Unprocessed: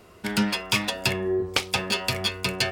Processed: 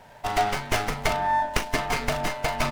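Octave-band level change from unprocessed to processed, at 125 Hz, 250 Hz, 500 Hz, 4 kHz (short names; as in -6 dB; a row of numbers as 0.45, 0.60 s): -1.0, -6.5, -0.5, -7.0 dB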